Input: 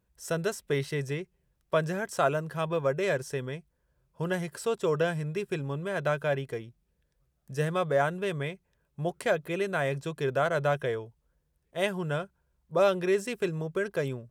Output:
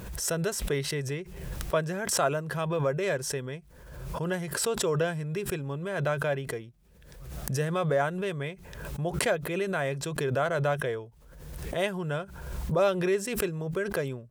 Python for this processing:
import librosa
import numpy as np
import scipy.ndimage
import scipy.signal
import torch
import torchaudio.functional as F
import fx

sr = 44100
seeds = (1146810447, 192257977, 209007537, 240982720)

y = fx.pre_swell(x, sr, db_per_s=48.0)
y = F.gain(torch.from_numpy(y), -1.0).numpy()